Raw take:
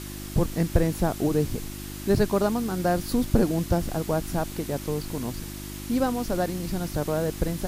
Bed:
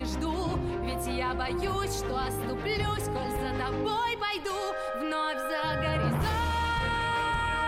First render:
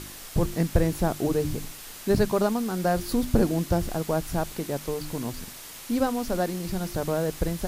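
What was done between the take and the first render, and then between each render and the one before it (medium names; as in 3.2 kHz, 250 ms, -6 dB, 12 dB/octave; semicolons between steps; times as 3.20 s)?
de-hum 50 Hz, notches 7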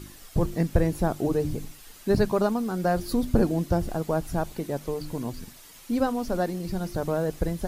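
noise reduction 9 dB, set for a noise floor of -42 dBFS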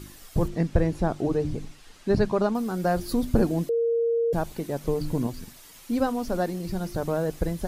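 0.48–2.55 s: distance through air 65 m; 3.69–4.33 s: bleep 464 Hz -20.5 dBFS; 4.84–5.27 s: bass shelf 470 Hz +7.5 dB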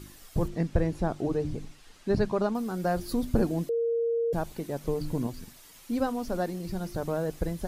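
trim -3.5 dB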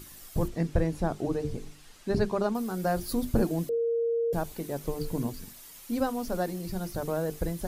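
treble shelf 9.1 kHz +9 dB; hum notches 50/100/150/200/250/300/350/400/450 Hz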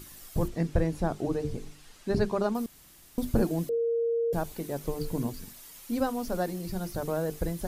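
2.66–3.18 s: room tone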